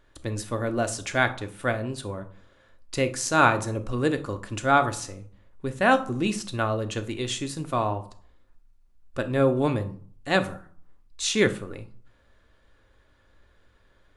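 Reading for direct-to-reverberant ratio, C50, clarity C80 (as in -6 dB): 7.5 dB, 14.5 dB, 19.5 dB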